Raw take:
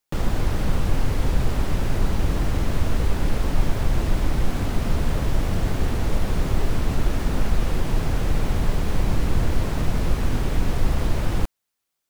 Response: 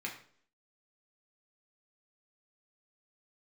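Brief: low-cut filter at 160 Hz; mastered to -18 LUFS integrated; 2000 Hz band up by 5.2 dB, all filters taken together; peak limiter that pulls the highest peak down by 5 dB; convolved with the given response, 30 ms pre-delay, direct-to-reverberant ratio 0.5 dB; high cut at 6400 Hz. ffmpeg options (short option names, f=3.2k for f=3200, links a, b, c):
-filter_complex "[0:a]highpass=160,lowpass=6.4k,equalizer=f=2k:t=o:g=6.5,alimiter=limit=-21dB:level=0:latency=1,asplit=2[a][b];[1:a]atrim=start_sample=2205,adelay=30[c];[b][c]afir=irnorm=-1:irlink=0,volume=-2.5dB[d];[a][d]amix=inputs=2:normalize=0,volume=10dB"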